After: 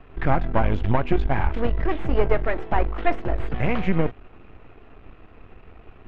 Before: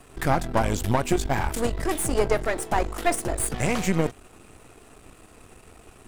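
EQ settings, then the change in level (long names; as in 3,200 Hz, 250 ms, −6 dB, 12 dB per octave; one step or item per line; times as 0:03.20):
low-pass filter 2,900 Hz 24 dB per octave
low-shelf EQ 66 Hz +10 dB
0.0 dB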